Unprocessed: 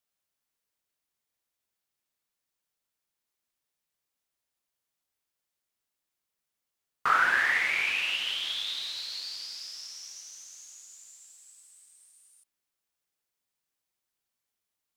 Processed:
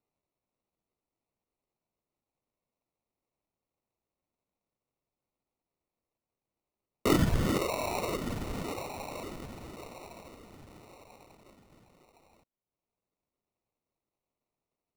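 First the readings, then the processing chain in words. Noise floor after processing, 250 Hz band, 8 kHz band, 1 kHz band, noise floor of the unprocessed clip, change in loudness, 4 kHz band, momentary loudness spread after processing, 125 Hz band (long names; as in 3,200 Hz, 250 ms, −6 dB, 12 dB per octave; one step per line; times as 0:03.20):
below −85 dBFS, +23.0 dB, −2.5 dB, −5.5 dB, below −85 dBFS, −4.5 dB, −11.5 dB, 21 LU, can't be measured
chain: reverb reduction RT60 0.98 s
low-pass filter 11,000 Hz 24 dB per octave
notch filter 2,400 Hz, Q 13
decimation without filtering 27×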